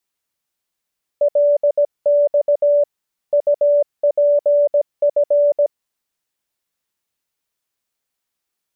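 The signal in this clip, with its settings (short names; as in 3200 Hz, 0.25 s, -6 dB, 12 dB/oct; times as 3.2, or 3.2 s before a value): Morse "LX UPF" 17 wpm 581 Hz -10.5 dBFS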